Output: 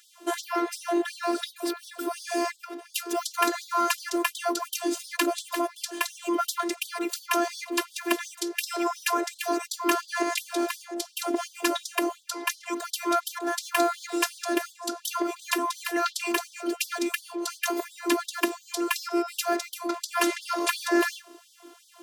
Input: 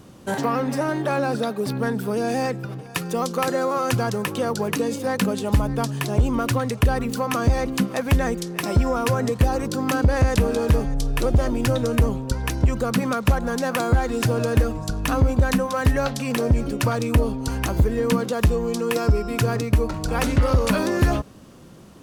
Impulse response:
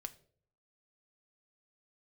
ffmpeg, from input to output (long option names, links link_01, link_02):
-af "afftfilt=real='hypot(re,im)*cos(PI*b)':imag='0':win_size=512:overlap=0.75,afftfilt=real='re*gte(b*sr/1024,230*pow(3200/230,0.5+0.5*sin(2*PI*2.8*pts/sr)))':imag='im*gte(b*sr/1024,230*pow(3200/230,0.5+0.5*sin(2*PI*2.8*pts/sr)))':win_size=1024:overlap=0.75,volume=4.5dB"